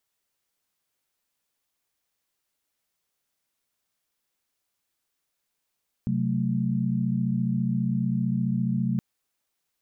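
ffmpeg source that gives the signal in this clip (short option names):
-f lavfi -i "aevalsrc='0.0447*(sin(2*PI*130.81*t)+sin(2*PI*185*t)+sin(2*PI*220*t))':d=2.92:s=44100"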